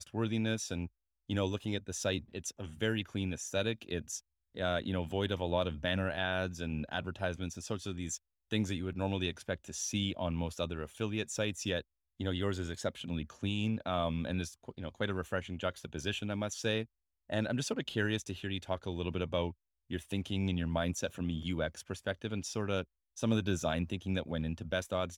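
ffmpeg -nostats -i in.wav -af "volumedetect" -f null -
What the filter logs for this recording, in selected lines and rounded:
mean_volume: -35.9 dB
max_volume: -17.1 dB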